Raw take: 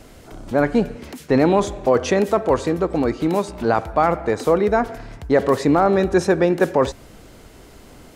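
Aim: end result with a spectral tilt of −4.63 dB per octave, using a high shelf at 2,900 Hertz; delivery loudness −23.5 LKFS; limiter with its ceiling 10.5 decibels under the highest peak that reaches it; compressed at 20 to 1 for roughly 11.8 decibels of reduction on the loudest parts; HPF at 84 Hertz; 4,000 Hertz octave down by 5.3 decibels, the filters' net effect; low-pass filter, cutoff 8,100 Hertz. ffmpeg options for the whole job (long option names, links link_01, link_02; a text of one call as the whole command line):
ffmpeg -i in.wav -af "highpass=84,lowpass=8100,highshelf=frequency=2900:gain=-3.5,equalizer=frequency=4000:width_type=o:gain=-3.5,acompressor=threshold=-23dB:ratio=20,volume=10dB,alimiter=limit=-12.5dB:level=0:latency=1" out.wav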